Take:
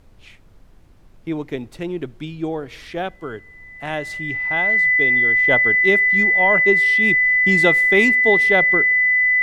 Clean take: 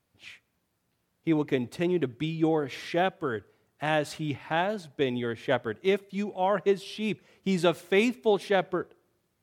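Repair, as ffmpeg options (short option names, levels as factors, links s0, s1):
-af "bandreject=f=2000:w=30,agate=range=0.0891:threshold=0.0126,asetnsamples=n=441:p=0,asendcmd='5.47 volume volume -5.5dB',volume=1"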